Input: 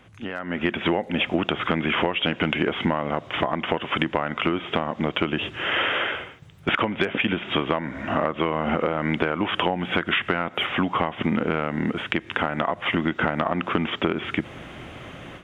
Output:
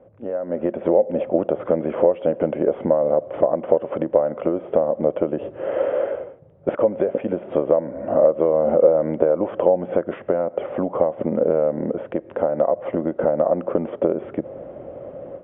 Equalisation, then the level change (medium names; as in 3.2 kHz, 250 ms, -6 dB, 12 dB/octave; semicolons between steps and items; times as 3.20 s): resonant low-pass 550 Hz, resonance Q 6.8; distance through air 63 m; tilt EQ +2 dB/octave; +1.0 dB